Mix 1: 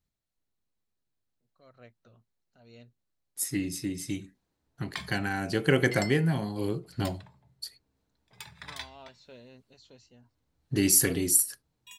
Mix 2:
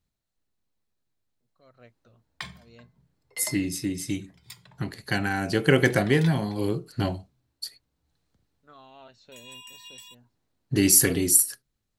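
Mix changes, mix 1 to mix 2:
second voice +4.0 dB; background: entry -2.55 s

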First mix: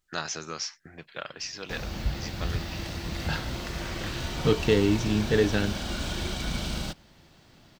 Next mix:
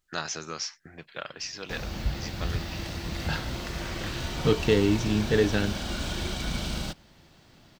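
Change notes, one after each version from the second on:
no change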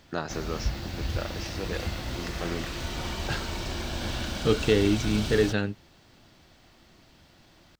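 first voice: add tilt shelf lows +9 dB, about 1.1 kHz; background: entry -1.40 s; master: add peaking EQ 160 Hz -4.5 dB 0.4 oct

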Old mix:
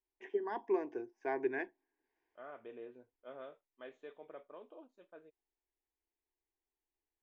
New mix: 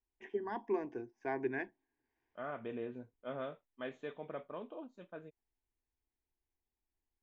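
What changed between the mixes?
second voice +8.5 dB; master: add resonant low shelf 260 Hz +9 dB, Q 1.5

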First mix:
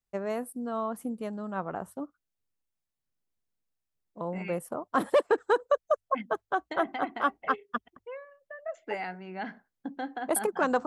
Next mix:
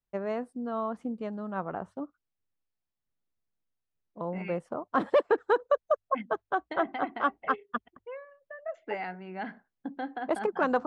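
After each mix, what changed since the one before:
master: add Gaussian low-pass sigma 1.7 samples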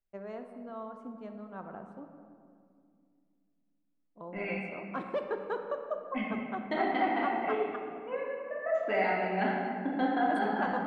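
first voice -11.0 dB; reverb: on, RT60 2.2 s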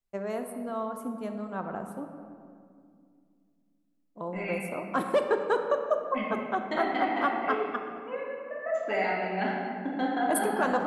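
first voice +8.5 dB; master: remove Gaussian low-pass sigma 1.7 samples

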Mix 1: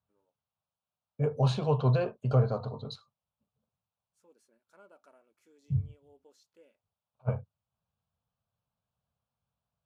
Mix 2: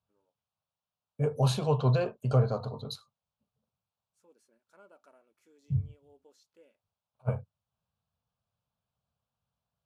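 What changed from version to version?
second voice: remove distance through air 110 m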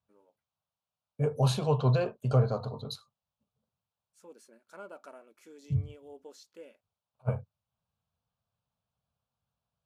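first voice +11.5 dB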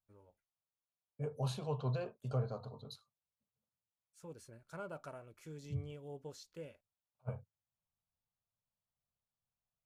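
first voice: remove brick-wall FIR high-pass 190 Hz; second voice -11.5 dB

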